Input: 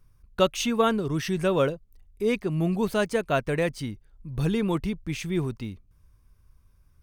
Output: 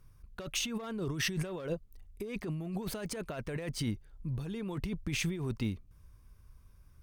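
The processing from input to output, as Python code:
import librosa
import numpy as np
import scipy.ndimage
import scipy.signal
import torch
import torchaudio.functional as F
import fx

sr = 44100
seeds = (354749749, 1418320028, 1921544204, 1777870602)

y = fx.clip_asym(x, sr, top_db=-19.5, bottom_db=-14.0)
y = fx.over_compress(y, sr, threshold_db=-32.0, ratio=-1.0)
y = y * 10.0 ** (-4.0 / 20.0)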